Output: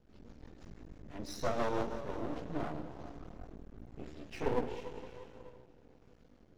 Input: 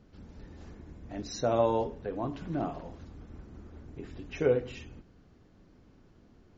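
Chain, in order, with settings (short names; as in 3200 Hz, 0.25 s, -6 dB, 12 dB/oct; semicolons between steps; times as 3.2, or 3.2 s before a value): plate-style reverb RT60 2.9 s, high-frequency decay 0.85×, pre-delay 0 ms, DRR 5.5 dB; rotary speaker horn 6 Hz, later 1 Hz, at 2.01; chorus voices 2, 0.72 Hz, delay 17 ms, depth 4.1 ms; half-wave rectifier; gain +3.5 dB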